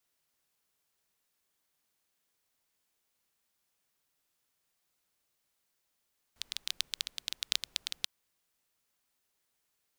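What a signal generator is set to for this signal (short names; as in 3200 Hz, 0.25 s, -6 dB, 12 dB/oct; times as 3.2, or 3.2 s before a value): rain from filtered ticks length 1.69 s, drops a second 12, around 3700 Hz, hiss -28 dB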